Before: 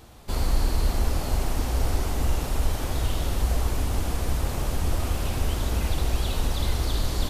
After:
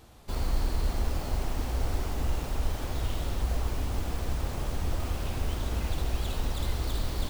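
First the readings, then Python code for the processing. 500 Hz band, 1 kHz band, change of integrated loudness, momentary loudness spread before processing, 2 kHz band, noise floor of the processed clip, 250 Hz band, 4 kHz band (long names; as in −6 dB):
−5.0 dB, −5.0 dB, −5.0 dB, 2 LU, −5.0 dB, −36 dBFS, −5.0 dB, −6.0 dB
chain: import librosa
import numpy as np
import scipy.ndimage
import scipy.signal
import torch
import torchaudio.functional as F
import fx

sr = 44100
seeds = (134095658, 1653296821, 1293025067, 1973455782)

y = fx.tracing_dist(x, sr, depth_ms=0.12)
y = F.gain(torch.from_numpy(y), -5.0).numpy()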